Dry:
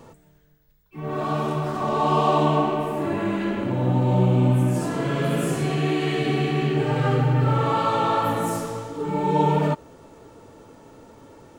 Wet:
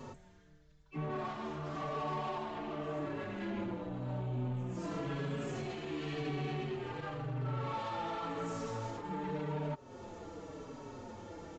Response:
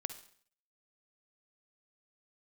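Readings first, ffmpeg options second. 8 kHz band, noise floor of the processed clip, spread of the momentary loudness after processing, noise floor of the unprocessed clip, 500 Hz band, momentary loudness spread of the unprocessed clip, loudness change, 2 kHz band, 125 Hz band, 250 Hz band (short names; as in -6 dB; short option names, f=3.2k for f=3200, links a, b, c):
-17.0 dB, -60 dBFS, 11 LU, -56 dBFS, -16.0 dB, 7 LU, -17.0 dB, -14.0 dB, -17.0 dB, -16.0 dB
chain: -filter_complex "[0:a]acompressor=threshold=-33dB:ratio=6,aresample=16000,asoftclip=type=tanh:threshold=-34dB,aresample=44100,asplit=2[a][b];[b]adelay=4.9,afreqshift=-0.92[c];[a][c]amix=inputs=2:normalize=1,volume=3dB"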